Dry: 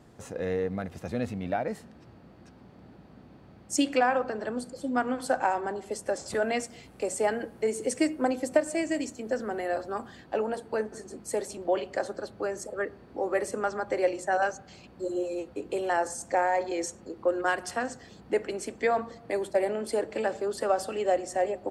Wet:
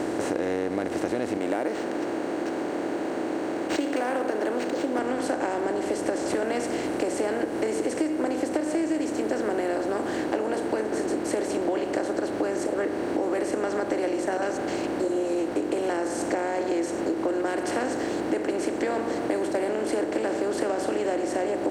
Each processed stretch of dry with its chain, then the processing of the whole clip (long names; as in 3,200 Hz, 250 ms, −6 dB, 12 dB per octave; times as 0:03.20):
0:01.37–0:04.99: high-pass filter 330 Hz + linearly interpolated sample-rate reduction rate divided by 4×
whole clip: compressor on every frequency bin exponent 0.4; parametric band 330 Hz +11.5 dB 0.63 octaves; downward compressor, threshold −20 dBFS; level −3 dB